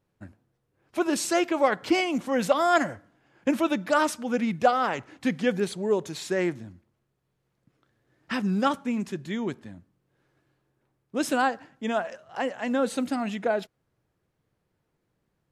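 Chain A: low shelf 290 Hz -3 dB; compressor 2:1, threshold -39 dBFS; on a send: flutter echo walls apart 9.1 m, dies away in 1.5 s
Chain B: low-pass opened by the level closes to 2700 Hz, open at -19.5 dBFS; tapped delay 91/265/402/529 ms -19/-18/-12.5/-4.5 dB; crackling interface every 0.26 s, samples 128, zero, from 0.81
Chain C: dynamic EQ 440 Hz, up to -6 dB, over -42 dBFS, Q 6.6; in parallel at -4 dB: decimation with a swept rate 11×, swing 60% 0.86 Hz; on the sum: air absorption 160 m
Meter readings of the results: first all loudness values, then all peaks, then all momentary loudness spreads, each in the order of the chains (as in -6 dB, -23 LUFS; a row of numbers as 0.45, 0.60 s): -33.0, -26.0, -24.0 LUFS; -17.5, -8.0, -6.0 dBFS; 13, 11, 10 LU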